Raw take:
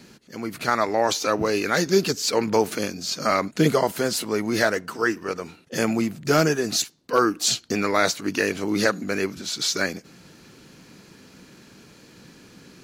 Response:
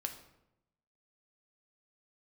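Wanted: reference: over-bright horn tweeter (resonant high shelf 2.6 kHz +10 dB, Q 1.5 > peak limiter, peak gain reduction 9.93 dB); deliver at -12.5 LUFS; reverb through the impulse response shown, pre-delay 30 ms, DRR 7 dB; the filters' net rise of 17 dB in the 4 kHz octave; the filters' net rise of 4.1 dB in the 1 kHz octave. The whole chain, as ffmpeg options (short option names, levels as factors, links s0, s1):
-filter_complex "[0:a]equalizer=f=1000:t=o:g=7,equalizer=f=4000:t=o:g=5.5,asplit=2[s0][s1];[1:a]atrim=start_sample=2205,adelay=30[s2];[s1][s2]afir=irnorm=-1:irlink=0,volume=0.473[s3];[s0][s3]amix=inputs=2:normalize=0,highshelf=f=2600:t=q:w=1.5:g=10,volume=1.5,alimiter=limit=0.944:level=0:latency=1"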